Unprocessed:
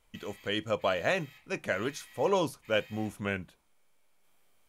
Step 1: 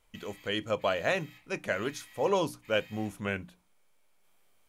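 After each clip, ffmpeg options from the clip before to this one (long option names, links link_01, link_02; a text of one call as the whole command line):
ffmpeg -i in.wav -af "bandreject=frequency=60:width_type=h:width=6,bandreject=frequency=120:width_type=h:width=6,bandreject=frequency=180:width_type=h:width=6,bandreject=frequency=240:width_type=h:width=6,bandreject=frequency=300:width_type=h:width=6" out.wav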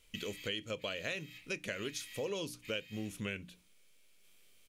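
ffmpeg -i in.wav -af "firequalizer=gain_entry='entry(470,0);entry(790,-12);entry(1200,-6);entry(2600,7);entry(14000,3)':delay=0.05:min_phase=1,acompressor=threshold=-38dB:ratio=5,volume=1.5dB" out.wav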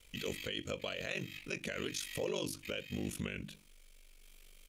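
ffmpeg -i in.wav -af "alimiter=level_in=10dB:limit=-24dB:level=0:latency=1:release=24,volume=-10dB,aeval=exprs='val(0)*sin(2*PI*24*n/s)':channel_layout=same,volume=7.5dB" out.wav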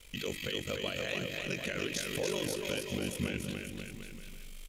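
ffmpeg -i in.wav -filter_complex "[0:a]asplit=2[link_01][link_02];[link_02]acompressor=threshold=-48dB:ratio=6,volume=1dB[link_03];[link_01][link_03]amix=inputs=2:normalize=0,aecho=1:1:290|536.5|746|924.1|1076:0.631|0.398|0.251|0.158|0.1" out.wav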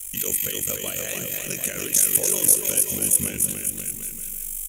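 ffmpeg -i in.wav -af "aexciter=amount=14.6:drive=6.6:freq=6700,volume=3dB" out.wav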